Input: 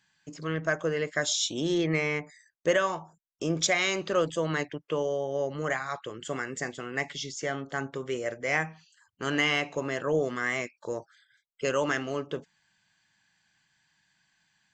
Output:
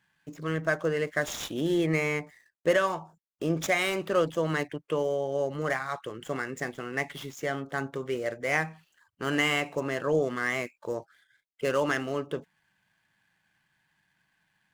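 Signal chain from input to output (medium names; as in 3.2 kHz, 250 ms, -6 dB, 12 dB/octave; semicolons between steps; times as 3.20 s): median filter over 9 samples; trim +1 dB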